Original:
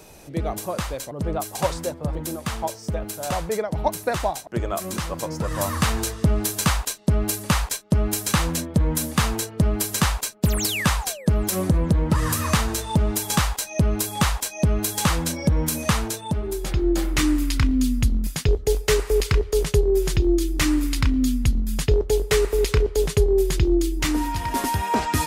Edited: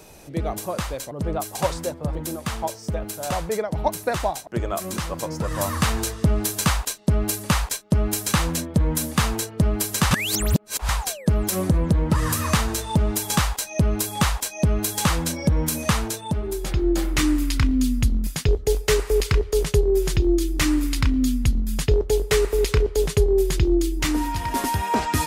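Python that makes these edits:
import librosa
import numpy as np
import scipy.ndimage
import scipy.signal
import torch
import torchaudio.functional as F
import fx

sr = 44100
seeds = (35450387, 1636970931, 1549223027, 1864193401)

y = fx.edit(x, sr, fx.reverse_span(start_s=10.11, length_s=0.78), tone=tone)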